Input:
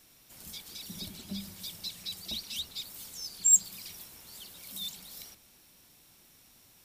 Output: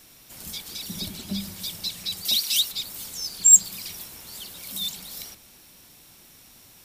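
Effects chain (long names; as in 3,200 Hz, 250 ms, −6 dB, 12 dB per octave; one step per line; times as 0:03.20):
0:02.25–0:02.72: spectral tilt +3 dB per octave
0:03.25–0:03.68: surface crackle 450 per second → 100 per second −49 dBFS
level +8.5 dB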